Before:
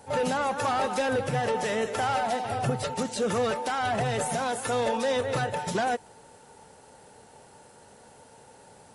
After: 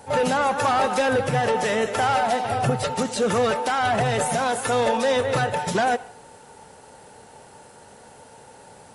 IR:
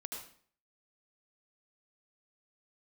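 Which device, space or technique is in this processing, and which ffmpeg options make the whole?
filtered reverb send: -filter_complex "[0:a]asplit=2[link_01][link_02];[link_02]highpass=490,lowpass=3800[link_03];[1:a]atrim=start_sample=2205[link_04];[link_03][link_04]afir=irnorm=-1:irlink=0,volume=-11.5dB[link_05];[link_01][link_05]amix=inputs=2:normalize=0,volume=5dB"

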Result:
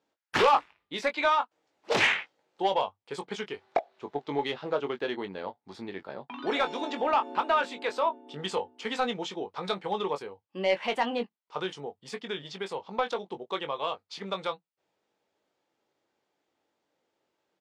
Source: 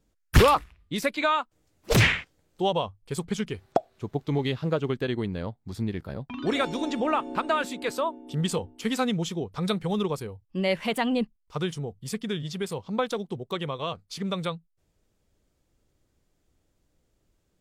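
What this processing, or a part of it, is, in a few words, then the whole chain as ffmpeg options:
intercom: -filter_complex "[0:a]highpass=410,lowpass=4200,equalizer=frequency=860:width_type=o:width=0.29:gain=6.5,asoftclip=type=tanh:threshold=-16dB,asplit=2[link_01][link_02];[link_02]adelay=21,volume=-8dB[link_03];[link_01][link_03]amix=inputs=2:normalize=0"

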